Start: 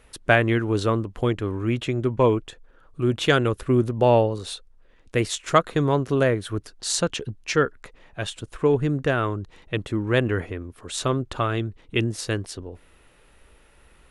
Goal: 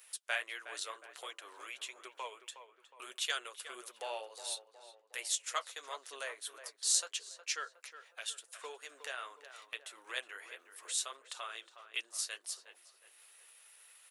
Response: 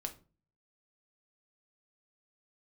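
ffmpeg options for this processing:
-filter_complex "[0:a]highpass=f=500:w=0.5412,highpass=f=500:w=1.3066,agate=range=0.0224:threshold=0.00355:ratio=3:detection=peak,aderivative,acompressor=mode=upward:threshold=0.0126:ratio=2.5,flanger=delay=3.7:depth=7.4:regen=-40:speed=1.5:shape=triangular,asplit=2[s0][s1];[s1]adelay=364,lowpass=f=2000:p=1,volume=0.299,asplit=2[s2][s3];[s3]adelay=364,lowpass=f=2000:p=1,volume=0.52,asplit=2[s4][s5];[s5]adelay=364,lowpass=f=2000:p=1,volume=0.52,asplit=2[s6][s7];[s7]adelay=364,lowpass=f=2000:p=1,volume=0.52,asplit=2[s8][s9];[s9]adelay=364,lowpass=f=2000:p=1,volume=0.52,asplit=2[s10][s11];[s11]adelay=364,lowpass=f=2000:p=1,volume=0.52[s12];[s0][s2][s4][s6][s8][s10][s12]amix=inputs=7:normalize=0,volume=1.19"

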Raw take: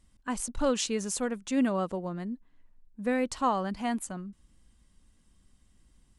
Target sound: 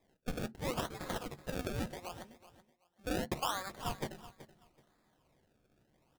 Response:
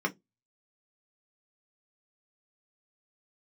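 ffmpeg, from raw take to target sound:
-filter_complex "[0:a]highpass=1100,alimiter=level_in=1.26:limit=0.0631:level=0:latency=1:release=472,volume=0.794,acrusher=samples=30:mix=1:aa=0.000001:lfo=1:lforange=30:lforate=0.75,aecho=1:1:378|756:0.168|0.0369,asplit=2[s0][s1];[1:a]atrim=start_sample=2205,asetrate=33516,aresample=44100[s2];[s1][s2]afir=irnorm=-1:irlink=0,volume=0.075[s3];[s0][s3]amix=inputs=2:normalize=0,volume=1.41"

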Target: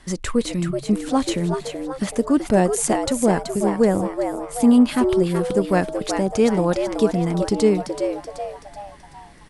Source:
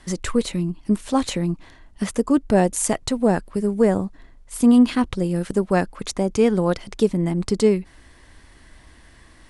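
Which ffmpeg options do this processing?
-filter_complex "[0:a]asplit=6[s0][s1][s2][s3][s4][s5];[s1]adelay=379,afreqshift=130,volume=0.447[s6];[s2]adelay=758,afreqshift=260,volume=0.207[s7];[s3]adelay=1137,afreqshift=390,volume=0.0944[s8];[s4]adelay=1516,afreqshift=520,volume=0.0437[s9];[s5]adelay=1895,afreqshift=650,volume=0.02[s10];[s0][s6][s7][s8][s9][s10]amix=inputs=6:normalize=0"

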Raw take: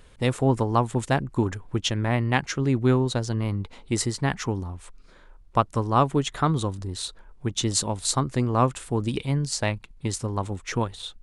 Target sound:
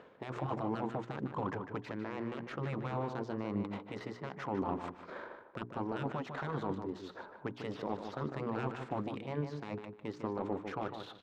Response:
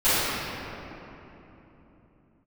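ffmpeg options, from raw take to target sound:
-filter_complex "[0:a]highpass=180,aemphasis=mode=production:type=riaa,afftfilt=real='re*lt(hypot(re,im),0.141)':imag='im*lt(hypot(re,im),0.141)':win_size=1024:overlap=0.75,lowpass=f=6900:w=0.5412,lowpass=f=6900:w=1.3066,highshelf=f=3400:g=-7,bandreject=f=60:t=h:w=6,bandreject=f=120:t=h:w=6,bandreject=f=180:t=h:w=6,bandreject=f=240:t=h:w=6,bandreject=f=300:t=h:w=6,bandreject=f=360:t=h:w=6,bandreject=f=420:t=h:w=6,areverse,acompressor=threshold=0.00398:ratio=5,areverse,alimiter=level_in=6.68:limit=0.0631:level=0:latency=1:release=90,volume=0.15,adynamicsmooth=sensitivity=6.5:basefreq=960,asplit=2[s0][s1];[s1]adelay=151,lowpass=f=3500:p=1,volume=0.447,asplit=2[s2][s3];[s3]adelay=151,lowpass=f=3500:p=1,volume=0.21,asplit=2[s4][s5];[s5]adelay=151,lowpass=f=3500:p=1,volume=0.21[s6];[s0][s2][s4][s6]amix=inputs=4:normalize=0,volume=7.5"

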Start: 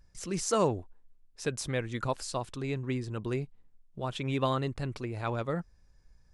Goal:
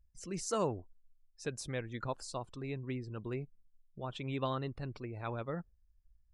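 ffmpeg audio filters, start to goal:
-af "afftdn=nr=20:nf=-50,volume=0.473"

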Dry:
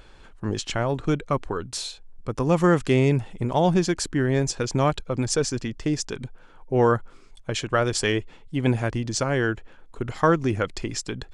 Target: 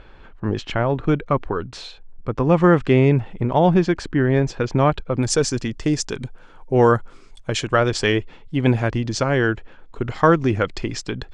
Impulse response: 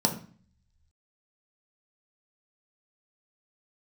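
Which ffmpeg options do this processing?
-af "asetnsamples=n=441:p=0,asendcmd='5.23 lowpass f 9600;7.76 lowpass f 4900',lowpass=2800,volume=1.68"

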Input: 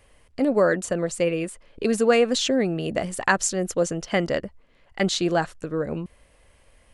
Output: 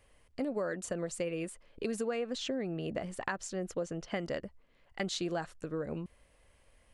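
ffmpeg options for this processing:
-filter_complex "[0:a]acompressor=threshold=0.0708:ratio=6,asettb=1/sr,asplit=3[s0][s1][s2];[s0]atrim=end=2.074[s3];[s1]atrim=start=2.07:end=4.16,asetpts=PTS-STARTPTS,afade=t=in:d=0.004:c=qsin,afade=t=out:st=2.086:d=0.004:c=qsin,highshelf=f=6000:g=-11.5[s4];[s2]atrim=start=4.156[s5];[s3][s4]acrossfade=d=0.004:c1=hsin:c2=qsin[s6];[s6][s5]acrossfade=d=0.004:c1=qsin:c2=hsin,volume=0.398"

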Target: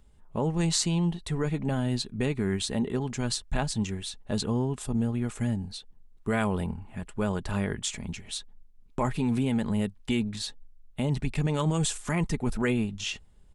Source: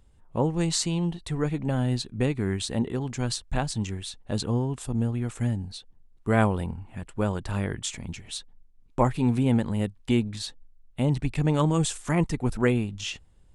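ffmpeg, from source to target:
-filter_complex "[0:a]aecho=1:1:4.8:0.3,acrossover=split=1600[s0][s1];[s0]alimiter=limit=0.119:level=0:latency=1:release=24[s2];[s2][s1]amix=inputs=2:normalize=0"

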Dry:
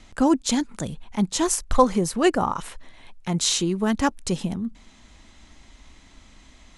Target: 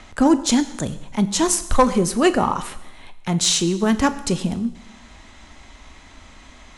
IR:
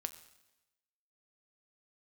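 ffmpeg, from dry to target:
-filter_complex "[0:a]acrossover=split=490|2300[s0][s1][s2];[s1]acompressor=mode=upward:threshold=0.00398:ratio=2.5[s3];[s0][s3][s2]amix=inputs=3:normalize=0,asoftclip=type=tanh:threshold=0.422[s4];[1:a]atrim=start_sample=2205[s5];[s4][s5]afir=irnorm=-1:irlink=0,volume=2"

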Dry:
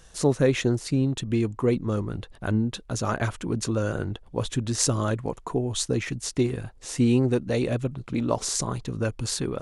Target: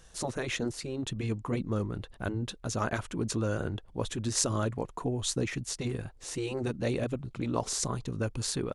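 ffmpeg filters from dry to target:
-af "atempo=1.1,afftfilt=real='re*lt(hypot(re,im),0.562)':imag='im*lt(hypot(re,im),0.562)':win_size=1024:overlap=0.75,volume=0.631"

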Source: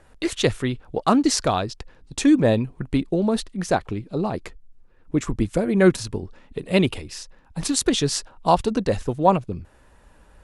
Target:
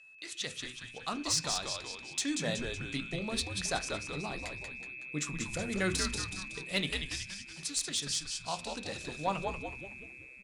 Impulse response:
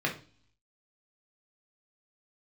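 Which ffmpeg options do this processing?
-filter_complex "[0:a]aeval=exprs='val(0)+0.0126*sin(2*PI*2600*n/s)':c=same,aderivative,bandreject=f=2500:w=12,asplit=2[s0][s1];[1:a]atrim=start_sample=2205[s2];[s1][s2]afir=irnorm=-1:irlink=0,volume=0.211[s3];[s0][s3]amix=inputs=2:normalize=0,dynaudnorm=f=360:g=5:m=2.99,lowpass=6500,bass=f=250:g=13,treble=f=4000:g=1,asplit=7[s4][s5][s6][s7][s8][s9][s10];[s5]adelay=186,afreqshift=-130,volume=0.562[s11];[s6]adelay=372,afreqshift=-260,volume=0.275[s12];[s7]adelay=558,afreqshift=-390,volume=0.135[s13];[s8]adelay=744,afreqshift=-520,volume=0.0661[s14];[s9]adelay=930,afreqshift=-650,volume=0.0324[s15];[s10]adelay=1116,afreqshift=-780,volume=0.0158[s16];[s4][s11][s12][s13][s14][s15][s16]amix=inputs=7:normalize=0,asoftclip=type=tanh:threshold=0.237,volume=0.473"

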